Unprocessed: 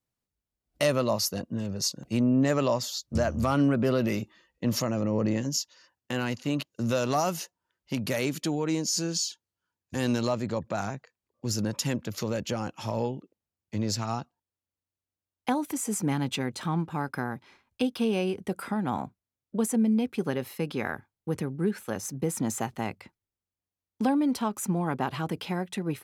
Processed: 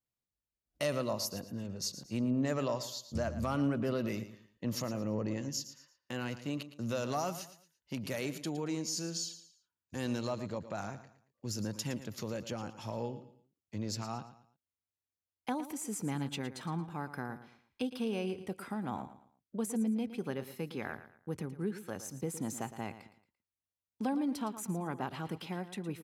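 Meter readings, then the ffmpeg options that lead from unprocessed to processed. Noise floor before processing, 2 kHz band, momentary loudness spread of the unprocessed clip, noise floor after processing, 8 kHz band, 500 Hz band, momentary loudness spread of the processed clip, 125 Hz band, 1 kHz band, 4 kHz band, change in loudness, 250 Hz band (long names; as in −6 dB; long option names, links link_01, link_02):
below −85 dBFS, −8.5 dB, 10 LU, below −85 dBFS, −8.5 dB, −8.0 dB, 11 LU, −8.0 dB, −8.5 dB, −8.5 dB, −8.5 dB, −8.0 dB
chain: -af "aecho=1:1:113|226|339:0.224|0.0716|0.0229,volume=-8.5dB"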